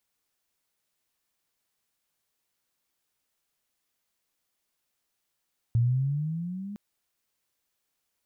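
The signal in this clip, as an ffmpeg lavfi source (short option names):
-f lavfi -i "aevalsrc='pow(10,(-19-16*t/1.01)/20)*sin(2*PI*114*1.01/(10.5*log(2)/12)*(exp(10.5*log(2)/12*t/1.01)-1))':d=1.01:s=44100"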